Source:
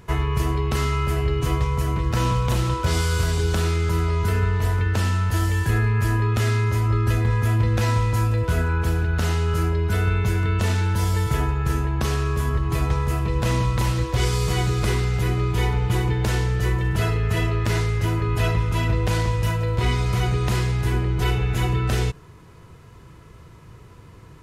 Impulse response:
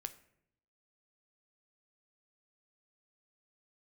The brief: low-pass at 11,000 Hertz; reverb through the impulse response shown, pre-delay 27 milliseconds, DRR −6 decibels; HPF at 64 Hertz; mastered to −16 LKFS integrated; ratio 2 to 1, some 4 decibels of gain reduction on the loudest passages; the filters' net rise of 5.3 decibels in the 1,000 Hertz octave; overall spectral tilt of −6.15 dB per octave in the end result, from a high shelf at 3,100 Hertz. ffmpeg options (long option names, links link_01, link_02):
-filter_complex "[0:a]highpass=64,lowpass=11000,equalizer=frequency=1000:width_type=o:gain=6.5,highshelf=frequency=3100:gain=-3.5,acompressor=threshold=-24dB:ratio=2,asplit=2[link_01][link_02];[1:a]atrim=start_sample=2205,adelay=27[link_03];[link_02][link_03]afir=irnorm=-1:irlink=0,volume=9dB[link_04];[link_01][link_04]amix=inputs=2:normalize=0,volume=2dB"